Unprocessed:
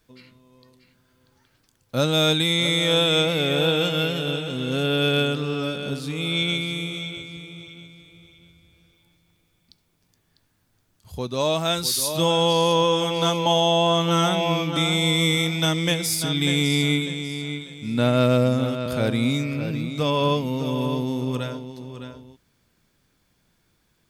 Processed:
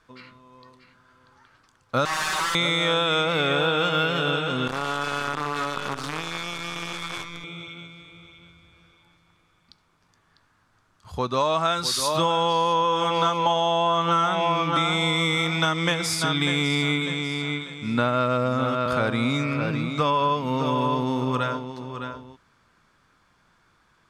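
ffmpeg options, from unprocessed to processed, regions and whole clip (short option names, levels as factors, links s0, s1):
-filter_complex "[0:a]asettb=1/sr,asplit=3[s0][s1][s2];[s0]atrim=end=2.054[s3];[s1]atrim=start=2.05:end=2.55,asetpts=PTS-STARTPTS,afade=t=in:d=0.004:c=qsin,afade=t=out:st=0.496:d=0.004:c=qsin,equalizer=f=6300:w=0.55:g=-4,aeval=exprs='(mod(17.8*val(0)+1,2)-1)/17.8':c=same,aecho=1:1:5.3:0.63,atrim=end_sample=22050[s4];[s2]atrim=start=2.546[s5];[s3][s4]acrossfade=d=0.004:c1=hsin:c2=qsin[s6];[s6][s5]acrossfade=d=0.004:c1=qsin:c2=hsin,asettb=1/sr,asplit=3[s7][s8][s9];[s7]atrim=end=4.674[s10];[s8]atrim=start=4.67:end=7.44,asetpts=PTS-STARTPTS,afade=t=in:d=0.004:c=qsin,afade=t=out:st=2.766:d=0.004:c=qsin,acompressor=threshold=0.0316:ratio=16:attack=3.2:release=140:knee=1:detection=peak,acrusher=bits=6:dc=4:mix=0:aa=0.000001[s11];[s9]atrim=start=7.436[s12];[s10][s11]acrossfade=d=0.004:c1=hsin:c2=qsin[s13];[s13][s12]acrossfade=d=0.004:c1=qsin:c2=hsin,lowpass=8100,equalizer=f=1200:w=1.1:g=14.5,acompressor=threshold=0.112:ratio=6"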